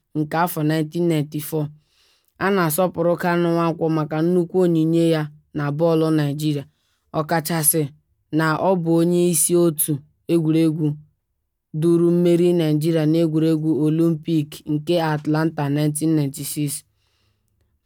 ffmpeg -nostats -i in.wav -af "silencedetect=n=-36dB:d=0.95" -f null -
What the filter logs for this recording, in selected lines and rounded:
silence_start: 16.80
silence_end: 17.85 | silence_duration: 1.06